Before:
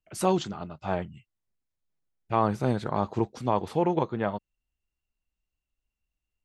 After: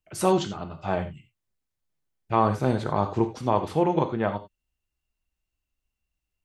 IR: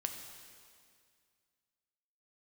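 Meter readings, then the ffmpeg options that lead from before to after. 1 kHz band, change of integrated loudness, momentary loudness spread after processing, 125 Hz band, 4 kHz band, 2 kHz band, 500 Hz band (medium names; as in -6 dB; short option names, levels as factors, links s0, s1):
+3.0 dB, +3.0 dB, 9 LU, +2.5 dB, +3.0 dB, +3.0 dB, +3.0 dB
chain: -filter_complex "[1:a]atrim=start_sample=2205,atrim=end_sample=4410[s0];[0:a][s0]afir=irnorm=-1:irlink=0,volume=1.41"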